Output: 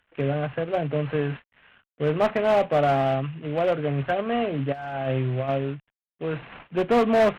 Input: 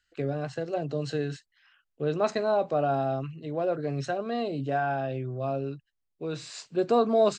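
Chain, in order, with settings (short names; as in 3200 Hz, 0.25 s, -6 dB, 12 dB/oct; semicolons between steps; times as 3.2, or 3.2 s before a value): CVSD 16 kbps; one-sided clip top -22.5 dBFS, bottom -18.5 dBFS; bell 350 Hz -4.5 dB 0.51 oct; 4.72–5.49 negative-ratio compressor -33 dBFS, ratio -0.5; gain +6.5 dB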